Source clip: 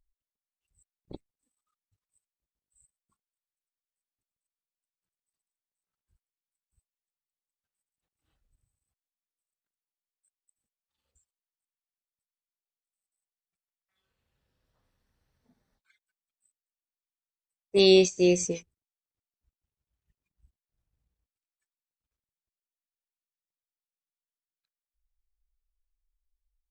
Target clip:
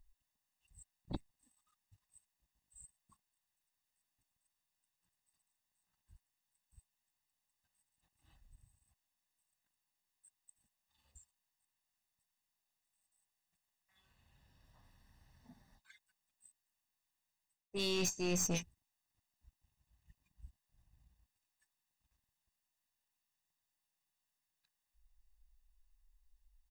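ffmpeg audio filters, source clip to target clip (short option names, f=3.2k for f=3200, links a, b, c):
-af "aecho=1:1:1.1:0.64,areverse,acompressor=threshold=-36dB:ratio=8,areverse,aeval=exprs='(tanh(70.8*val(0)+0.4)-tanh(0.4))/70.8':c=same,volume=7.5dB"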